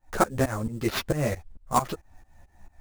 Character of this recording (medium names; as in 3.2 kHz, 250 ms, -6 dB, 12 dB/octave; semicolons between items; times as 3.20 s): aliases and images of a low sample rate 8.3 kHz, jitter 20%; tremolo saw up 4.5 Hz, depth 95%; a shimmering, thickened sound